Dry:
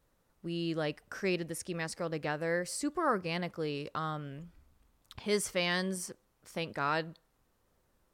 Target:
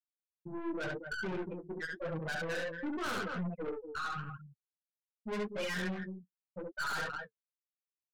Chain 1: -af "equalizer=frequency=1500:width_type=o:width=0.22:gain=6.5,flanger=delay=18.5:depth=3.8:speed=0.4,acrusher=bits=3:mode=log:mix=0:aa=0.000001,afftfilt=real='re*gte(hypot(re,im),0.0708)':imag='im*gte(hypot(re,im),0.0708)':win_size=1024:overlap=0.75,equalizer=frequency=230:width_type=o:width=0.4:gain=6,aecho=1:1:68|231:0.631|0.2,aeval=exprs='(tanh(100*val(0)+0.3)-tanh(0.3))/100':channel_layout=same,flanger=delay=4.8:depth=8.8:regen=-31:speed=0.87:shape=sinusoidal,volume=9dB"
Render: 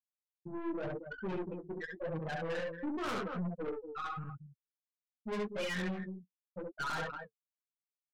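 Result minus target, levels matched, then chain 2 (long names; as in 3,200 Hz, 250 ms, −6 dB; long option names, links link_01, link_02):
2,000 Hz band −3.5 dB
-af "equalizer=frequency=1500:width_type=o:width=0.22:gain=15.5,flanger=delay=18.5:depth=3.8:speed=0.4,acrusher=bits=3:mode=log:mix=0:aa=0.000001,afftfilt=real='re*gte(hypot(re,im),0.0708)':imag='im*gte(hypot(re,im),0.0708)':win_size=1024:overlap=0.75,equalizer=frequency=230:width_type=o:width=0.4:gain=6,aecho=1:1:68|231:0.631|0.2,aeval=exprs='(tanh(100*val(0)+0.3)-tanh(0.3))/100':channel_layout=same,flanger=delay=4.8:depth=8.8:regen=-31:speed=0.87:shape=sinusoidal,volume=9dB"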